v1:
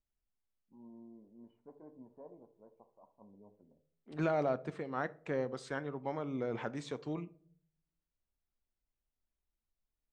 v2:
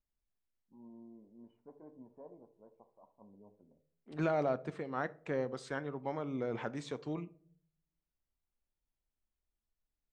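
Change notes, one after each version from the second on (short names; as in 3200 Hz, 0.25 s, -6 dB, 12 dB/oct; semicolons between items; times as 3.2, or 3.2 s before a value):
none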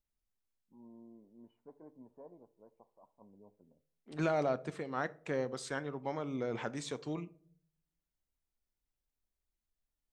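first voice: send -7.0 dB; master: remove LPF 2600 Hz 6 dB/oct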